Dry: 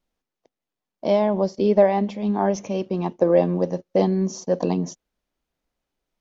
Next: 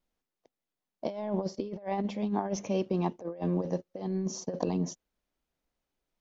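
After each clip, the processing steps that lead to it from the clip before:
compressor whose output falls as the input rises −23 dBFS, ratio −0.5
level −7.5 dB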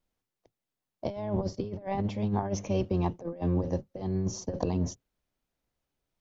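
sub-octave generator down 1 octave, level −1 dB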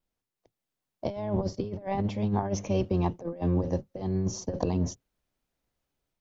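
automatic gain control gain up to 4.5 dB
level −3 dB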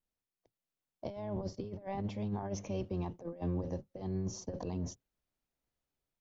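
brickwall limiter −20 dBFS, peak gain reduction 9 dB
level −7.5 dB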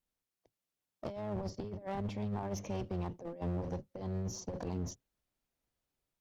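asymmetric clip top −41 dBFS, bottom −28.5 dBFS
level +1.5 dB

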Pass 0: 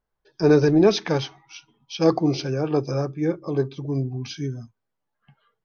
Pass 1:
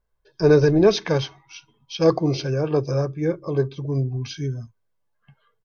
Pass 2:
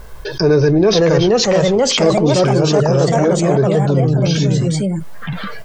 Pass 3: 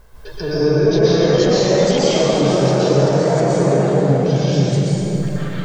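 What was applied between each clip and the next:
low-shelf EQ 110 Hz +7 dB; comb filter 1.9 ms, depth 35%
delay with pitch and tempo change per echo 566 ms, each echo +2 semitones, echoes 3; envelope flattener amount 70%; level +1 dB
dense smooth reverb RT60 3.5 s, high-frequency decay 0.6×, pre-delay 110 ms, DRR −9.5 dB; level −12 dB

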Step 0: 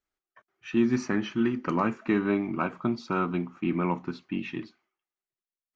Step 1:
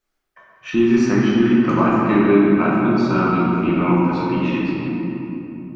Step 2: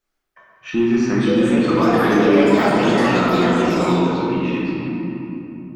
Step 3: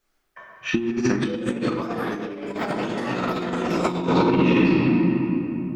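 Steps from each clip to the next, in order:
convolution reverb RT60 3.1 s, pre-delay 6 ms, DRR −6 dB; in parallel at 0 dB: downward compressor, threshold −26 dBFS, peak gain reduction 14 dB; on the sum: level +1 dB
in parallel at −9 dB: hard clipping −16.5 dBFS, distortion −9 dB; on the sum: delay with pitch and tempo change per echo 745 ms, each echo +6 semitones, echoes 3; level −3.5 dB
compressor whose output falls as the input rises −21 dBFS, ratio −0.5

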